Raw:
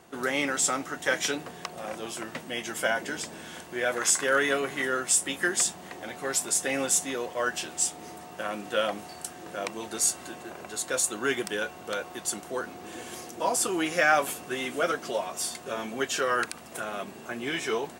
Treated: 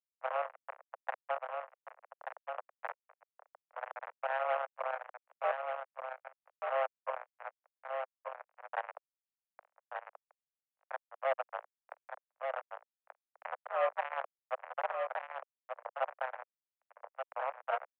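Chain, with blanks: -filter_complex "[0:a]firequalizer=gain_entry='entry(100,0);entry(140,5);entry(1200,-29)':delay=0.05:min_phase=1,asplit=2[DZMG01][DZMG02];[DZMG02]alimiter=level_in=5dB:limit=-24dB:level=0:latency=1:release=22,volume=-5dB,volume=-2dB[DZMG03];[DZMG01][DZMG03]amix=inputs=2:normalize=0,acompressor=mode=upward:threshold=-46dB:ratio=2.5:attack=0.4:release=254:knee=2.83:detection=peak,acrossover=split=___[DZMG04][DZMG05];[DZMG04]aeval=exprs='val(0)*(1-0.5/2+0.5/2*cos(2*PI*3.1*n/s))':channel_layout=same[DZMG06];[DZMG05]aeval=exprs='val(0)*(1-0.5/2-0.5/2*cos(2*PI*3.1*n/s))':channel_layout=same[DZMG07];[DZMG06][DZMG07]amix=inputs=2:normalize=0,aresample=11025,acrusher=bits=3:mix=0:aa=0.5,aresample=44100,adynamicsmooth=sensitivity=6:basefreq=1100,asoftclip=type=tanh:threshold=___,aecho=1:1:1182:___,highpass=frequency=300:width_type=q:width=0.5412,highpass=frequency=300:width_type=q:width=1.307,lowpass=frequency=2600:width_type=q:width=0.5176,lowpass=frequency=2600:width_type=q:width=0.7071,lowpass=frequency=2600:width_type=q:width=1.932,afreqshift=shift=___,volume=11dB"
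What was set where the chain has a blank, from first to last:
460, -31dB, 0.531, 260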